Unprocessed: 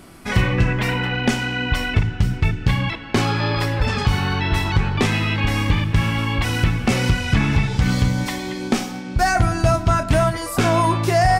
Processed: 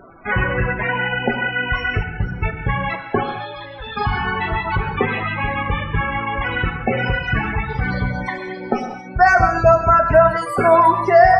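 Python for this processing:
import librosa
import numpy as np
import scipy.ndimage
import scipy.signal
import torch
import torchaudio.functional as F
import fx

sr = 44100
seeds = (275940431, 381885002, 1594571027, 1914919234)

y = fx.dereverb_blind(x, sr, rt60_s=0.78)
y = fx.ladder_lowpass(y, sr, hz=3900.0, resonance_pct=75, at=(3.23, 3.97))
y = fx.spec_topn(y, sr, count=32)
y = fx.band_shelf(y, sr, hz=950.0, db=11.5, octaves=2.6)
y = fx.rev_gated(y, sr, seeds[0], gate_ms=230, shape='flat', drr_db=6.0)
y = y * 10.0 ** (-4.0 / 20.0)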